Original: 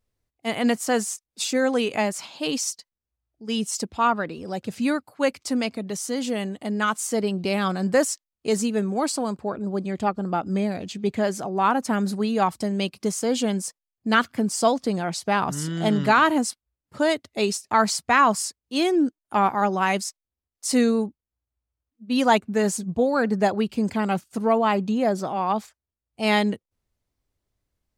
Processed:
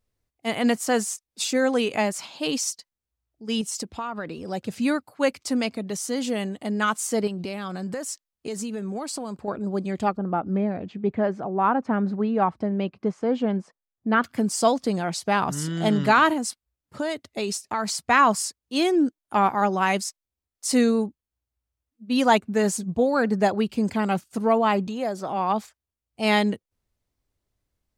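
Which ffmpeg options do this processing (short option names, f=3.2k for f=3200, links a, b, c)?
-filter_complex "[0:a]asettb=1/sr,asplit=3[a][b][c];[a]atrim=end=3.614[d];[b]atrim=start=3.61:end=4.45,asetpts=PTS-STARTPTS,afade=t=in:d=0.004:c=qsin,afade=t=out:st=0.836:d=0.004:c=qsin,acompressor=threshold=-26dB:ratio=16:attack=3.2:release=140:knee=1:detection=peak[e];[c]atrim=start=4.446[f];[d][e]acrossfade=d=0.004:c1=hsin:c2=qsin[g];[g][f]acrossfade=d=0.004:c1=qsin:c2=hsin,asettb=1/sr,asplit=3[h][i][j];[h]atrim=end=7.274[k];[i]atrim=start=7.27:end=9.48,asetpts=PTS-STARTPTS,afade=t=in:d=0.004:c=qsin,afade=t=out:st=2.206:d=0.004:c=qsin,acompressor=threshold=-27dB:ratio=10:attack=3.2:release=140:knee=1:detection=peak[l];[j]atrim=start=9.476[m];[k][l]acrossfade=d=0.004:c1=hsin:c2=qsin[n];[n][m]acrossfade=d=0.004:c1=qsin:c2=hsin,asettb=1/sr,asplit=3[o][p][q];[o]atrim=end=10.174[r];[p]atrim=start=10.17:end=14.24,asetpts=PTS-STARTPTS,afade=t=in:d=0.004:c=qsin,afade=t=out:st=4.066:d=0.004:c=qsin,lowpass=1.6k[s];[q]atrim=start=14.236[t];[r][s]acrossfade=d=0.004:c1=hsin:c2=qsin[u];[u][t]acrossfade=d=0.004:c1=qsin:c2=hsin,asettb=1/sr,asplit=3[v][w][x];[v]atrim=end=16.334[y];[w]atrim=start=16.33:end=18.05,asetpts=PTS-STARTPTS,afade=t=in:d=0.004:c=qsin,afade=t=out:st=1.716:d=0.004:c=qsin,acompressor=threshold=-24dB:ratio=3:attack=3.2:release=140:knee=1:detection=peak[z];[x]atrim=start=18.046[aa];[y][z]acrossfade=d=0.004:c1=hsin:c2=qsin[ab];[ab][aa]acrossfade=d=0.004:c1=qsin:c2=hsin,asettb=1/sr,asplit=3[ac][ad][ae];[ac]atrim=end=24.874[af];[ad]atrim=start=24.87:end=25.29,asetpts=PTS-STARTPTS,afade=t=in:d=0.004:c=qsin,afade=t=out:st=0.416:d=0.004:c=qsin,acrossover=split=440|1400|3300[ag][ah][ai][aj];[ag]acompressor=threshold=-35dB:ratio=3[ak];[ah]acompressor=threshold=-27dB:ratio=3[al];[ai]acompressor=threshold=-46dB:ratio=3[am];[aj]acompressor=threshold=-46dB:ratio=3[an];[ak][al][am][an]amix=inputs=4:normalize=0[ao];[ae]atrim=start=25.286[ap];[af][ao]acrossfade=d=0.004:c1=hsin:c2=qsin[aq];[aq][ap]acrossfade=d=0.004:c1=qsin:c2=hsin"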